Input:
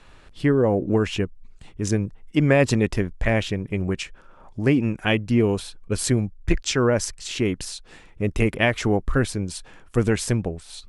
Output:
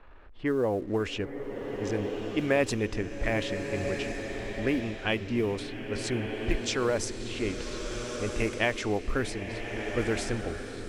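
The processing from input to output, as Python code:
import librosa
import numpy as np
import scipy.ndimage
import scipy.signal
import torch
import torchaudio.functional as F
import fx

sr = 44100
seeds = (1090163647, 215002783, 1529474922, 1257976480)

y = fx.law_mismatch(x, sr, coded='mu')
y = fx.peak_eq(y, sr, hz=150.0, db=-11.0, octaves=0.99)
y = fx.env_lowpass(y, sr, base_hz=1500.0, full_db=-17.0)
y = fx.rev_bloom(y, sr, seeds[0], attack_ms=1400, drr_db=4.5)
y = y * librosa.db_to_amplitude(-6.5)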